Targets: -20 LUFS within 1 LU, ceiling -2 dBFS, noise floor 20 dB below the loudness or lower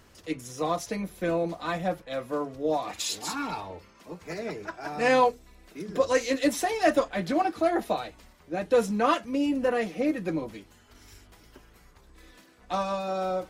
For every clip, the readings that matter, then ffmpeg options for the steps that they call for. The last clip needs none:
loudness -28.0 LUFS; peak -9.0 dBFS; loudness target -20.0 LUFS
-> -af "volume=8dB,alimiter=limit=-2dB:level=0:latency=1"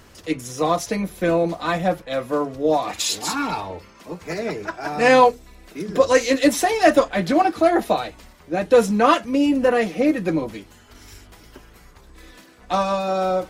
loudness -20.0 LUFS; peak -2.0 dBFS; noise floor -49 dBFS

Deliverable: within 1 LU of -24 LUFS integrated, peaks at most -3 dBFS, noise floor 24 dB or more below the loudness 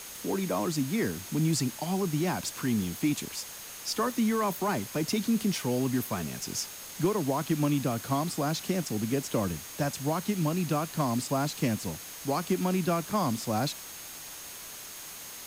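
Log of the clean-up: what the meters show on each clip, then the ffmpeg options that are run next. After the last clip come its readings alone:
steady tone 6500 Hz; tone level -49 dBFS; noise floor -43 dBFS; noise floor target -55 dBFS; loudness -30.5 LUFS; peak -17.0 dBFS; loudness target -24.0 LUFS
-> -af "bandreject=f=6.5k:w=30"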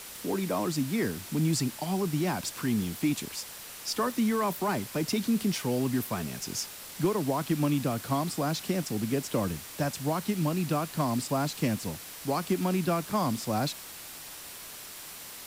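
steady tone none; noise floor -44 dBFS; noise floor target -54 dBFS
-> -af "afftdn=nr=10:nf=-44"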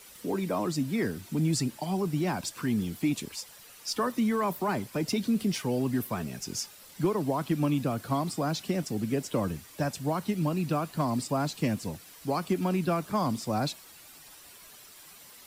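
noise floor -51 dBFS; noise floor target -55 dBFS
-> -af "afftdn=nr=6:nf=-51"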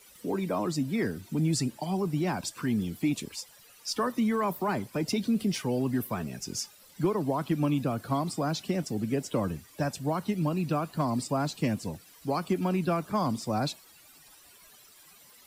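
noise floor -56 dBFS; loudness -30.5 LUFS; peak -17.5 dBFS; loudness target -24.0 LUFS
-> -af "volume=6.5dB"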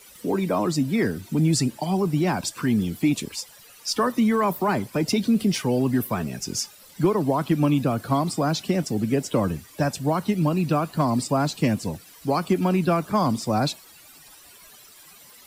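loudness -24.0 LUFS; peak -11.0 dBFS; noise floor -49 dBFS

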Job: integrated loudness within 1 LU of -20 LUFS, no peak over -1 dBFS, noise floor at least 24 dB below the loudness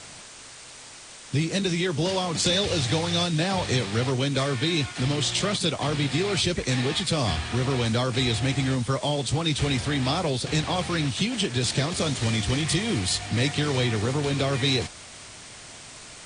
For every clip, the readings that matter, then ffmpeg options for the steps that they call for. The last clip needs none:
noise floor -44 dBFS; noise floor target -49 dBFS; loudness -25.0 LUFS; peak -11.0 dBFS; loudness target -20.0 LUFS
-> -af "afftdn=nr=6:nf=-44"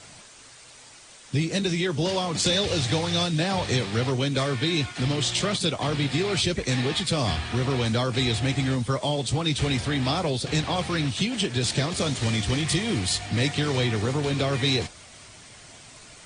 noise floor -48 dBFS; noise floor target -49 dBFS
-> -af "afftdn=nr=6:nf=-48"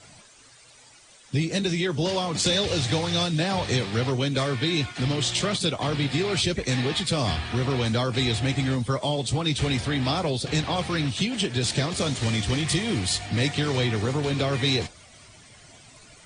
noise floor -52 dBFS; loudness -25.0 LUFS; peak -11.0 dBFS; loudness target -20.0 LUFS
-> -af "volume=5dB"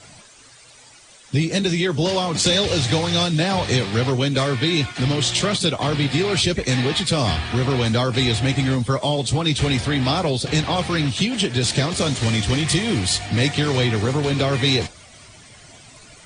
loudness -20.0 LUFS; peak -6.0 dBFS; noise floor -47 dBFS

